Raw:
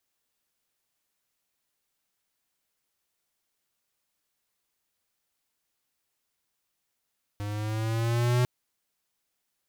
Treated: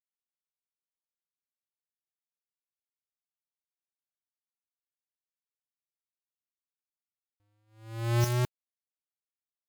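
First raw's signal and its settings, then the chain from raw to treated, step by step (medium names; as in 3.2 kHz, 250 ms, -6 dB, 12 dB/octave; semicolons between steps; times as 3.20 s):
gliding synth tone square, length 1.05 s, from 102 Hz, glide +3.5 st, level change +11 dB, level -22.5 dB
gate -28 dBFS, range -45 dB; band-stop 5.8 kHz, Q 7.9; in parallel at -3.5 dB: integer overflow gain 26 dB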